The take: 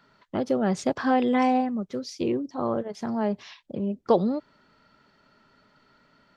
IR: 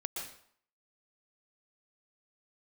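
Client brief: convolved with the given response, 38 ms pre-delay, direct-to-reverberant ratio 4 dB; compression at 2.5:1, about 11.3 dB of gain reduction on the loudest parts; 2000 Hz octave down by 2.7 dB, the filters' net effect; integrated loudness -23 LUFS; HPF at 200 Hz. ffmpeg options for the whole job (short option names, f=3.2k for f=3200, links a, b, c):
-filter_complex "[0:a]highpass=200,equalizer=f=2k:t=o:g=-3.5,acompressor=threshold=-32dB:ratio=2.5,asplit=2[a][b];[1:a]atrim=start_sample=2205,adelay=38[c];[b][c]afir=irnorm=-1:irlink=0,volume=-5dB[d];[a][d]amix=inputs=2:normalize=0,volume=10.5dB"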